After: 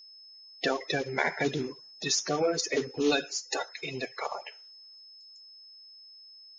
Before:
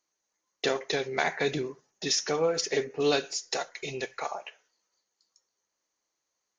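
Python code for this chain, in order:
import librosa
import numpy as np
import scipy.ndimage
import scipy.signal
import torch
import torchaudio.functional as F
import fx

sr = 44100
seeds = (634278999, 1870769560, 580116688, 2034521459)

y = fx.spec_quant(x, sr, step_db=30)
y = y + 10.0 ** (-49.0 / 20.0) * np.sin(2.0 * np.pi * 5200.0 * np.arange(len(y)) / sr)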